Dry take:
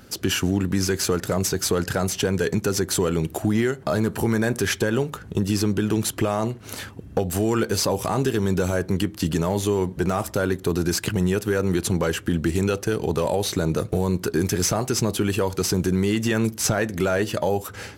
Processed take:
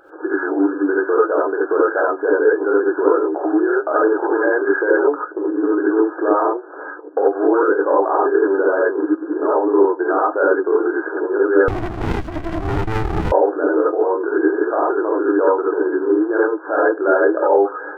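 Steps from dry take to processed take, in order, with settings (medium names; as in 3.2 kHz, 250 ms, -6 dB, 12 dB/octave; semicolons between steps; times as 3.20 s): FFT band-pass 290–1700 Hz; vibrato 8.6 Hz 19 cents; gated-style reverb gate 110 ms rising, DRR -5.5 dB; 11.68–13.32 s: sliding maximum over 65 samples; trim +3.5 dB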